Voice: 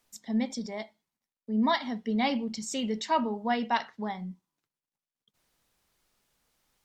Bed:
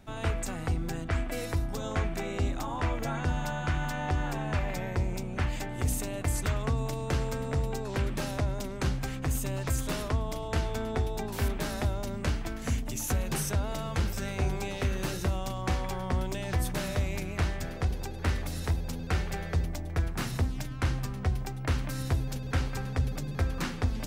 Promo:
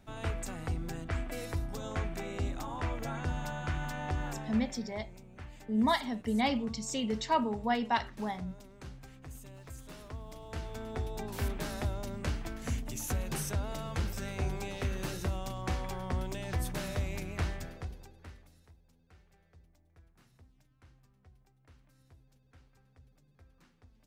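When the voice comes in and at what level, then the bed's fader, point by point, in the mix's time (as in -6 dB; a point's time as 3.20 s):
4.20 s, -2.0 dB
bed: 4.28 s -5 dB
4.87 s -17.5 dB
9.79 s -17.5 dB
11.26 s -4.5 dB
17.53 s -4.5 dB
18.76 s -32 dB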